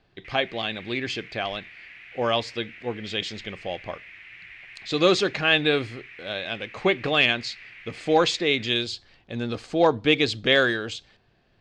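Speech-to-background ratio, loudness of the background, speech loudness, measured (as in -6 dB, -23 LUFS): 18.5 dB, -43.0 LUFS, -24.5 LUFS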